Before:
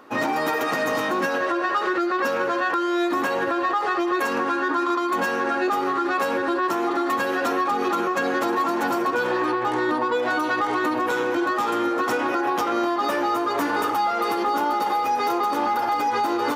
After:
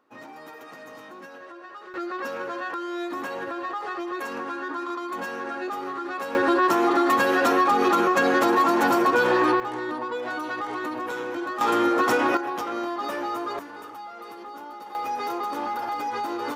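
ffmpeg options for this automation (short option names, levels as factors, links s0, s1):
-af "asetnsamples=n=441:p=0,asendcmd='1.94 volume volume -8.5dB;6.35 volume volume 3dB;9.6 volume volume -7.5dB;11.61 volume volume 2dB;12.37 volume volume -6.5dB;13.59 volume volume -17dB;14.95 volume volume -6.5dB',volume=0.106"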